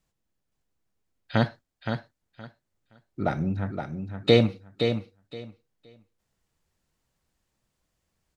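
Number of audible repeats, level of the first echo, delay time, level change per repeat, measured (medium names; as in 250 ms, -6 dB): 2, -7.0 dB, 519 ms, -14.5 dB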